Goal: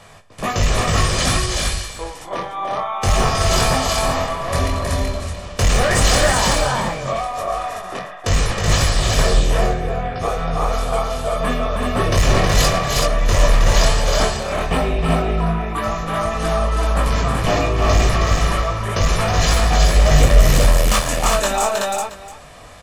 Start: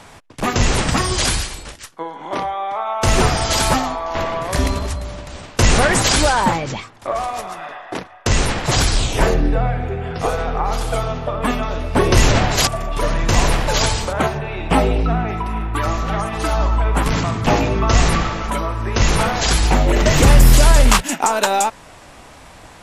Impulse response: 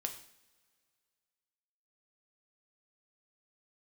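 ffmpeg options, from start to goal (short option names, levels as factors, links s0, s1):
-filter_complex "[0:a]flanger=delay=19:depth=4.4:speed=0.1,asoftclip=type=hard:threshold=0.224,aecho=1:1:1.7:0.41,asplit=2[s0][s1];[s1]aecho=0:1:45|110|318|378|675:0.211|0.15|0.562|0.708|0.141[s2];[s0][s2]amix=inputs=2:normalize=0"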